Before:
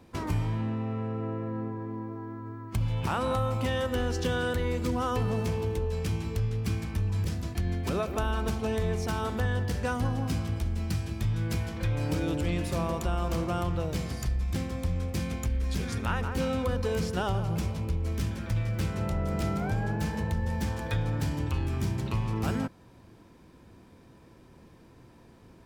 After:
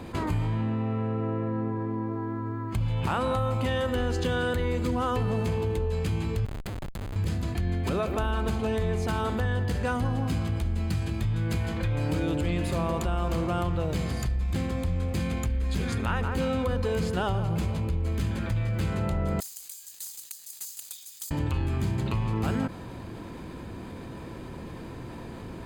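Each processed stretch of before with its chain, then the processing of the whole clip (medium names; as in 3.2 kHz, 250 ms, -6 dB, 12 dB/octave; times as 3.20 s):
6.45–7.16 s: pre-emphasis filter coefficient 0.8 + Schmitt trigger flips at -39.5 dBFS
19.40–21.31 s: comb filter that takes the minimum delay 3.7 ms + inverse Chebyshev high-pass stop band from 1.1 kHz, stop band 80 dB + careless resampling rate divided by 2×, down none, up zero stuff
whole clip: treble shelf 8.9 kHz -6 dB; band-stop 5.6 kHz, Q 5.2; level flattener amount 50%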